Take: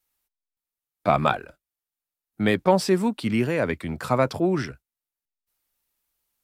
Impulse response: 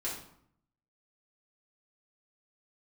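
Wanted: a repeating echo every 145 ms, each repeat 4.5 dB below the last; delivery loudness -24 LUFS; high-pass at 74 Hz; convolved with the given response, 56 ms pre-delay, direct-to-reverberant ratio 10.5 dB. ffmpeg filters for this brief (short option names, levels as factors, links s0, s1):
-filter_complex "[0:a]highpass=74,aecho=1:1:145|290|435|580|725|870|1015|1160|1305:0.596|0.357|0.214|0.129|0.0772|0.0463|0.0278|0.0167|0.01,asplit=2[s0][s1];[1:a]atrim=start_sample=2205,adelay=56[s2];[s1][s2]afir=irnorm=-1:irlink=0,volume=0.211[s3];[s0][s3]amix=inputs=2:normalize=0,volume=0.794"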